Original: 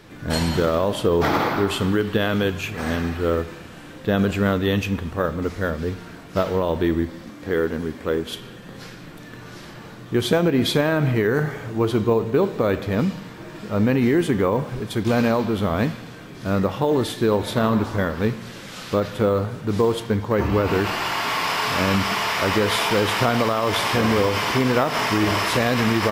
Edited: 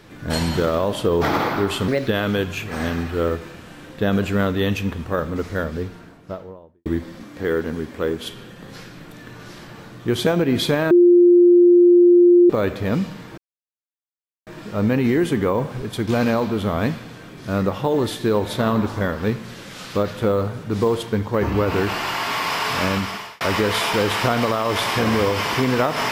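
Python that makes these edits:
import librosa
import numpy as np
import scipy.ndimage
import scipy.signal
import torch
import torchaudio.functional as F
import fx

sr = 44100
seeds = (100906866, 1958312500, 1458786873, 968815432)

y = fx.studio_fade_out(x, sr, start_s=5.6, length_s=1.32)
y = fx.edit(y, sr, fx.speed_span(start_s=1.88, length_s=0.26, speed=1.32),
    fx.bleep(start_s=10.97, length_s=1.59, hz=351.0, db=-8.0),
    fx.insert_silence(at_s=13.44, length_s=1.09),
    fx.fade_out_span(start_s=21.81, length_s=0.57), tone=tone)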